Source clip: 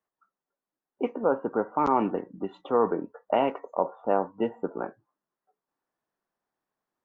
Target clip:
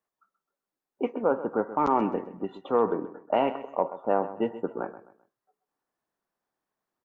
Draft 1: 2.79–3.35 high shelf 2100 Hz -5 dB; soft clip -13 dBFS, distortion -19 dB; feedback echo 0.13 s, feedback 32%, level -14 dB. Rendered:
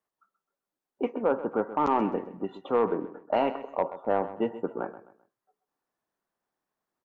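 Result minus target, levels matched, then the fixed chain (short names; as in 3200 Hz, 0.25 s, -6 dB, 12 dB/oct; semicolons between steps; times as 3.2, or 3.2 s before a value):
soft clip: distortion +14 dB
2.79–3.35 high shelf 2100 Hz -5 dB; soft clip -5 dBFS, distortion -33 dB; feedback echo 0.13 s, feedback 32%, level -14 dB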